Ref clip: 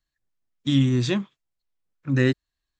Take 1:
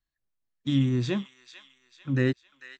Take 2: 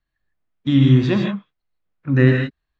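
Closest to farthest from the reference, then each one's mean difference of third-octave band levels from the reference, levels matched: 1, 2; 1.0, 5.0 dB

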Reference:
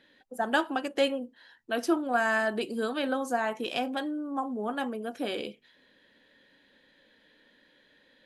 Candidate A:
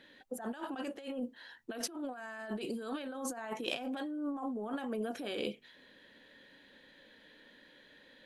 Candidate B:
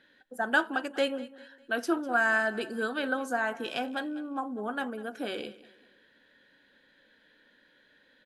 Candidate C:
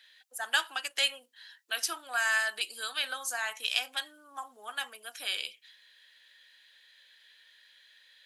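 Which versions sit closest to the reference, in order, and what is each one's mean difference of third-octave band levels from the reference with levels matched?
B, A, C; 2.5, 6.0, 10.5 dB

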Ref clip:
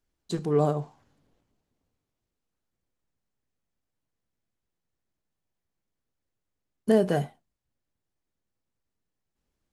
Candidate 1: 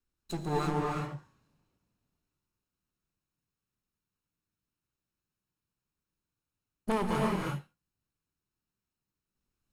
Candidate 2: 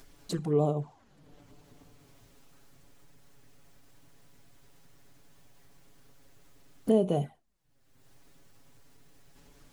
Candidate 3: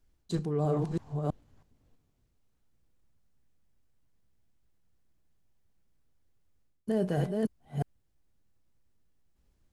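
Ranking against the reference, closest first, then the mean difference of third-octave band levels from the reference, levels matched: 2, 3, 1; 3.5, 4.5, 10.0 dB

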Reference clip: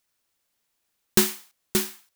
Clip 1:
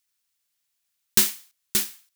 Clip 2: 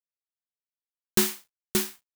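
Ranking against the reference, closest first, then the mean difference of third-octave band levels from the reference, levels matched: 2, 1; 2.0, 4.0 dB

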